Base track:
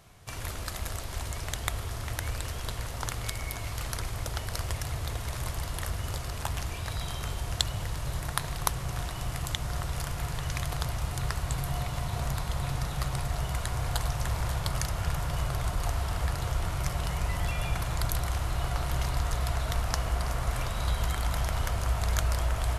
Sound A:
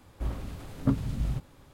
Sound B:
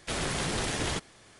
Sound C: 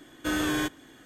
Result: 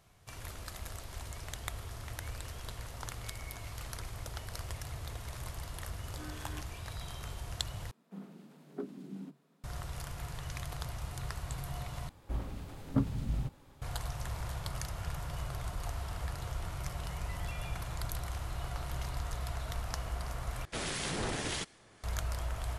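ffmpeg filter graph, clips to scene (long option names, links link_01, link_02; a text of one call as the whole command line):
ffmpeg -i bed.wav -i cue0.wav -i cue1.wav -i cue2.wav -filter_complex "[1:a]asplit=2[link_01][link_02];[0:a]volume=-8.5dB[link_03];[3:a]acrossover=split=1700[link_04][link_05];[link_04]aeval=exprs='val(0)*(1-0.7/2+0.7/2*cos(2*PI*3*n/s))':channel_layout=same[link_06];[link_05]aeval=exprs='val(0)*(1-0.7/2-0.7/2*cos(2*PI*3*n/s))':channel_layout=same[link_07];[link_06][link_07]amix=inputs=2:normalize=0[link_08];[link_01]afreqshift=140[link_09];[link_02]equalizer=frequency=840:width_type=o:width=0.24:gain=3.5[link_10];[2:a]acrossover=split=1800[link_11][link_12];[link_11]aeval=exprs='val(0)*(1-0.5/2+0.5/2*cos(2*PI*1.6*n/s))':channel_layout=same[link_13];[link_12]aeval=exprs='val(0)*(1-0.5/2-0.5/2*cos(2*PI*1.6*n/s))':channel_layout=same[link_14];[link_13][link_14]amix=inputs=2:normalize=0[link_15];[link_03]asplit=4[link_16][link_17][link_18][link_19];[link_16]atrim=end=7.914[link_20];[link_09]atrim=end=1.73,asetpts=PTS-STARTPTS,volume=-15.5dB[link_21];[link_17]atrim=start=9.636:end=12.094[link_22];[link_10]atrim=end=1.73,asetpts=PTS-STARTPTS,volume=-4dB[link_23];[link_18]atrim=start=13.816:end=20.654[link_24];[link_15]atrim=end=1.39,asetpts=PTS-STARTPTS,volume=-2.5dB[link_25];[link_19]atrim=start=22.036[link_26];[link_08]atrim=end=1.05,asetpts=PTS-STARTPTS,volume=-18dB,afade=type=in:duration=0.004:curve=hsin,afade=type=out:start_time=1.046:duration=0.004:curve=hsin,adelay=261513S[link_27];[link_20][link_21]acrossfade=duration=0.004:curve1=hsin:curve2=hsin[link_28];[link_28][link_22]acrossfade=duration=0.004:curve1=hsin:curve2=hsin[link_29];[link_29][link_23]acrossfade=duration=0.004:curve1=hsin:curve2=hsin[link_30];[link_30][link_24]acrossfade=duration=0.004:curve1=hsin:curve2=hsin[link_31];[link_31][link_25]acrossfade=duration=0.004:curve1=hsin:curve2=hsin[link_32];[link_32][link_26]acrossfade=duration=0.004:curve1=hsin:curve2=hsin[link_33];[link_33][link_27]amix=inputs=2:normalize=0" out.wav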